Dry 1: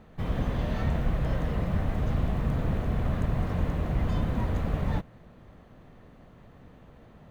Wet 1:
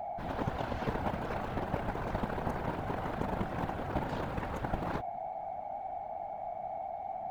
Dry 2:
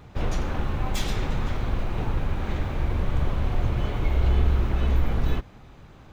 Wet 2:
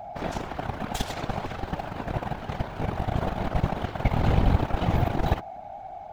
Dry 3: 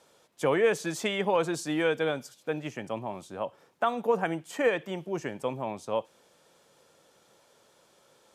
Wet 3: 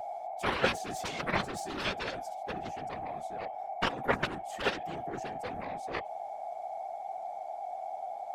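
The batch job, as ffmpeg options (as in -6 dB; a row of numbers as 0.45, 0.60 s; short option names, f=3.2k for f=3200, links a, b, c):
-af "aeval=exprs='val(0)+0.0282*sin(2*PI*740*n/s)':c=same,aeval=exprs='0.376*(cos(1*acos(clip(val(0)/0.376,-1,1)))-cos(1*PI/2))+0.075*(cos(2*acos(clip(val(0)/0.376,-1,1)))-cos(2*PI/2))+0.0188*(cos(4*acos(clip(val(0)/0.376,-1,1)))-cos(4*PI/2))+0.00211*(cos(5*acos(clip(val(0)/0.376,-1,1)))-cos(5*PI/2))+0.0944*(cos(7*acos(clip(val(0)/0.376,-1,1)))-cos(7*PI/2))':c=same,afftfilt=real='hypot(re,im)*cos(2*PI*random(0))':imag='hypot(re,im)*sin(2*PI*random(1))':win_size=512:overlap=0.75,volume=4dB"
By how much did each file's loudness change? -7.0, -1.5, -5.5 LU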